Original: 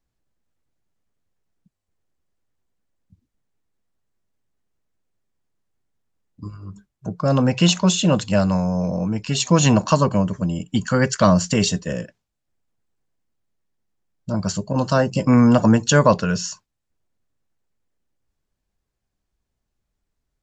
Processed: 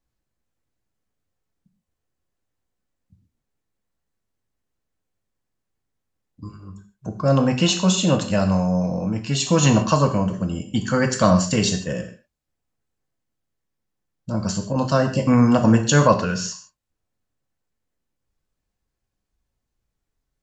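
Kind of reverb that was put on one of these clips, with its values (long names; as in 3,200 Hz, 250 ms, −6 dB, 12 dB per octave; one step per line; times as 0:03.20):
reverb whose tail is shaped and stops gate 180 ms falling, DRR 4 dB
level −2 dB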